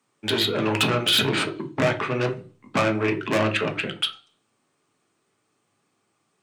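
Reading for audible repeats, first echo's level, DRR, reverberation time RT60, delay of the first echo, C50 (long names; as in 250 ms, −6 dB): no echo audible, no echo audible, 5.5 dB, 0.40 s, no echo audible, 15.5 dB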